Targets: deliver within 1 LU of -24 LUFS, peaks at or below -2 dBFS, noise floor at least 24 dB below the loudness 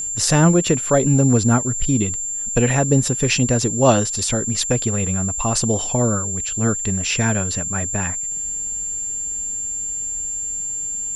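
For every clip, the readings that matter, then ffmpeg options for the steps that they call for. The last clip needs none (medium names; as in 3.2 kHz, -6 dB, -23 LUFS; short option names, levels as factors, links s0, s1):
steady tone 7.3 kHz; tone level -23 dBFS; loudness -19.0 LUFS; peak level -2.0 dBFS; loudness target -24.0 LUFS
-> -af "bandreject=f=7300:w=30"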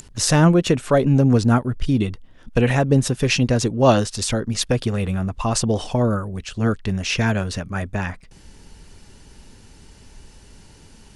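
steady tone not found; loudness -20.0 LUFS; peak level -2.0 dBFS; loudness target -24.0 LUFS
-> -af "volume=0.631"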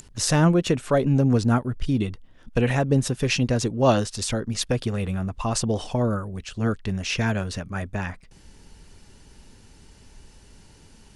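loudness -24.0 LUFS; peak level -6.0 dBFS; noise floor -52 dBFS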